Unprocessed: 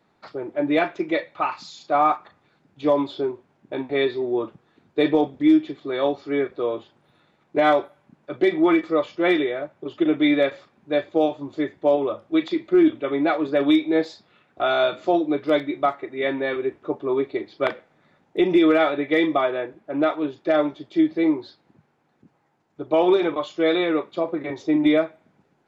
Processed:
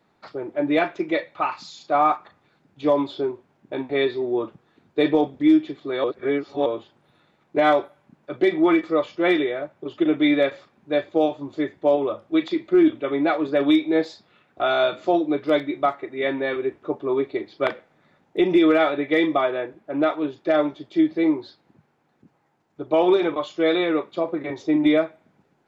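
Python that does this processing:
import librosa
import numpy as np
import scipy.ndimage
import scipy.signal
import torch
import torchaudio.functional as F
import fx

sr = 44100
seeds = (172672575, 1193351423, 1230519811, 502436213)

y = fx.edit(x, sr, fx.reverse_span(start_s=6.04, length_s=0.62), tone=tone)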